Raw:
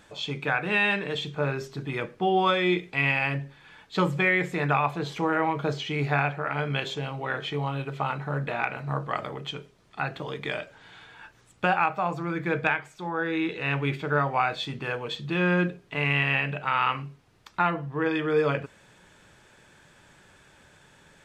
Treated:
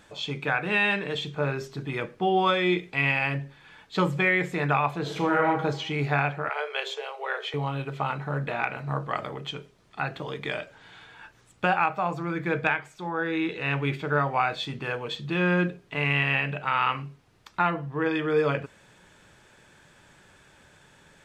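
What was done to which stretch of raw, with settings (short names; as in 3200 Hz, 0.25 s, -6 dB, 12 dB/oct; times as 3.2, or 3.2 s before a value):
5–5.48 reverb throw, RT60 0.87 s, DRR 2 dB
6.49–7.54 steep high-pass 380 Hz 96 dB/oct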